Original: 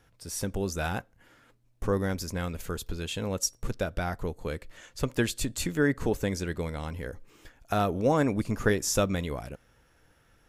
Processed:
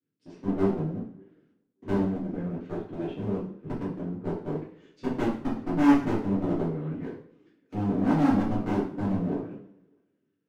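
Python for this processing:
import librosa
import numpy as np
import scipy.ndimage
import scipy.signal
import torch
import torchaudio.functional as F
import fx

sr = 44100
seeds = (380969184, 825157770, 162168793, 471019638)

y = np.where(x < 0.0, 10.0 ** (-12.0 / 20.0) * x, x)
y = scipy.signal.sosfilt(scipy.signal.bessel(8, 200.0, 'highpass', norm='mag', fs=sr, output='sos'), y)
y = fx.env_lowpass_down(y, sr, base_hz=300.0, full_db=-31.5)
y = scipy.signal.sosfilt(scipy.signal.butter(2, 2800.0, 'lowpass', fs=sr, output='sos'), y)
y = fx.low_shelf_res(y, sr, hz=480.0, db=13.5, q=3.0)
y = fx.echo_thinned(y, sr, ms=582, feedback_pct=46, hz=510.0, wet_db=-19)
y = fx.clip_asym(y, sr, top_db=-28.5, bottom_db=-19.0)
y = fx.rev_double_slope(y, sr, seeds[0], early_s=0.52, late_s=1.9, knee_db=-18, drr_db=-7.5)
y = fx.band_widen(y, sr, depth_pct=70)
y = F.gain(torch.from_numpy(y), -7.5).numpy()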